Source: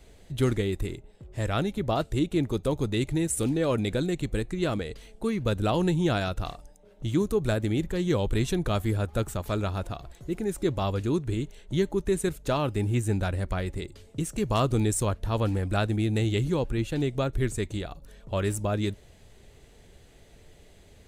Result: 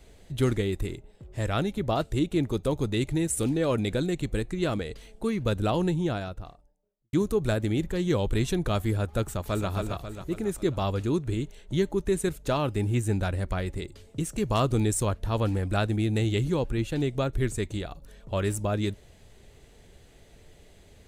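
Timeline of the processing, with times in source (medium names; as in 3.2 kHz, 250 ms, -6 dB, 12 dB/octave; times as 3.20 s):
5.49–7.13 s: studio fade out
9.23–9.70 s: echo throw 270 ms, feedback 50%, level -5 dB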